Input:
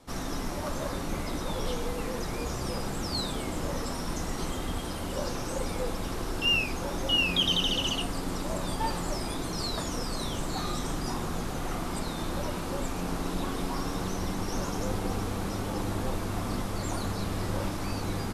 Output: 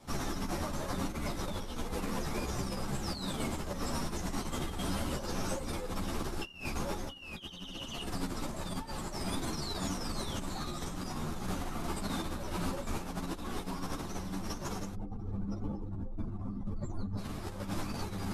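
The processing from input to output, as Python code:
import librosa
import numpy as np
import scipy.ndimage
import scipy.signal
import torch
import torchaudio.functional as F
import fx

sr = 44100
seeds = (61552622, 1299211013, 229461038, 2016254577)

y = fx.spec_expand(x, sr, power=2.0, at=(14.93, 17.17), fade=0.02)
y = fx.peak_eq(y, sr, hz=160.0, db=4.0, octaves=0.77)
y = fx.notch(y, sr, hz=480.0, q=14.0)
y = fx.over_compress(y, sr, threshold_db=-33.0, ratio=-0.5)
y = fx.ensemble(y, sr)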